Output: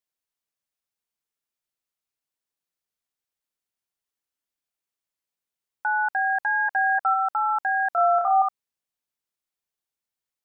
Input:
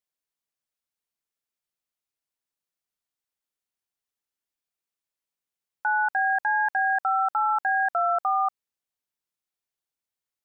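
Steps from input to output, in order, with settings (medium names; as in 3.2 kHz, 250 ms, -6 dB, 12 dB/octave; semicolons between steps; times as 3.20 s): 6.41–7.14 s: comb 7.5 ms, depth 60%; 7.89–8.42 s: flutter echo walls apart 4.9 m, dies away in 0.52 s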